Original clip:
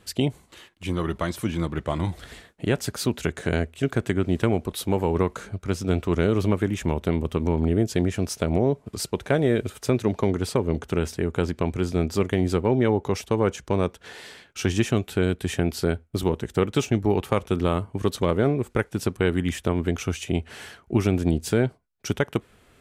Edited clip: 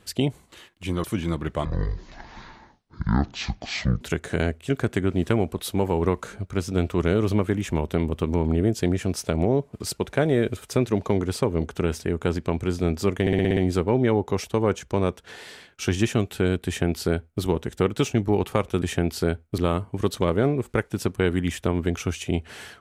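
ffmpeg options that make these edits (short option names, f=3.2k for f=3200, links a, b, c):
-filter_complex "[0:a]asplit=12[a][b][c][d][e][f][g][h][i][j][k][l];[a]atrim=end=1.042[m];[b]atrim=start=1.348:end=1.964[n];[c]atrim=start=1.96:end=3.14,asetpts=PTS-STARTPTS,asetrate=22050,aresample=44100[o];[d]atrim=start=3.136:end=12.402[p];[e]atrim=start=12.338:end=12.402[q];[f]atrim=start=12.338:end=12.402[r];[g]atrim=start=12.338:end=12.402[s];[h]atrim=start=12.338:end=12.402[t];[i]atrim=start=12.338:end=12.402[u];[j]atrim=start=12.338:end=17.592[v];[k]atrim=start=15.428:end=16.192[w];[l]atrim=start=17.588[x];[m][n]acrossfade=d=0.004:c1=hsin:c2=hsin[y];[y][o]acrossfade=d=0.004:c1=hsin:c2=hsin[z];[z][p]acrossfade=d=0.004:c1=hsin:c2=hsin[aa];[aa][q]acrossfade=d=0.004:c1=hsin:c2=hsin[ab];[ab][r]acrossfade=d=0.004:c1=hsin:c2=hsin[ac];[ac][s]acrossfade=d=0.004:c1=hsin:c2=hsin[ad];[ad][t]acrossfade=d=0.004:c1=hsin:c2=hsin[ae];[ae][u]acrossfade=d=0.004:c1=hsin:c2=hsin[af];[af][v]acrossfade=d=0.004:c1=hsin:c2=hsin[ag];[ag][w]acrossfade=d=0.004:c1=hsin:c2=hsin[ah];[ah][x]acrossfade=d=0.004:c1=hsin:c2=hsin"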